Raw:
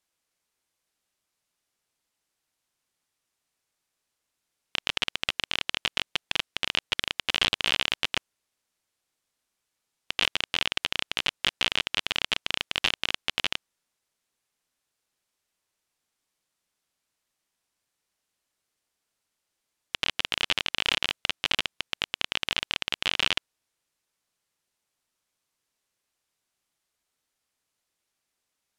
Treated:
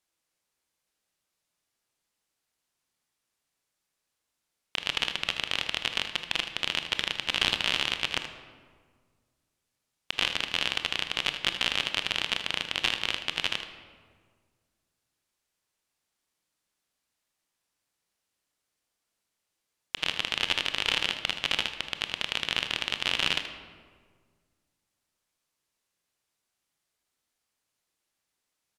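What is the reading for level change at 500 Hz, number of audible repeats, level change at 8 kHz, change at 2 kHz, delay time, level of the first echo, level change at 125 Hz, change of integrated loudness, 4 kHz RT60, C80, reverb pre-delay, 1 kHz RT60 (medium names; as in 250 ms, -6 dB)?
-0.5 dB, 1, -1.0 dB, -0.5 dB, 78 ms, -11.0 dB, 0.0 dB, -0.5 dB, 0.95 s, 11.0 dB, 21 ms, 1.6 s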